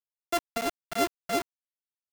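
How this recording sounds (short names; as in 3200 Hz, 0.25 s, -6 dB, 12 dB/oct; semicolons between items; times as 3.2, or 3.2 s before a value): a buzz of ramps at a fixed pitch in blocks of 64 samples; tremolo triangle 6.1 Hz, depth 90%; a quantiser's noise floor 6-bit, dither none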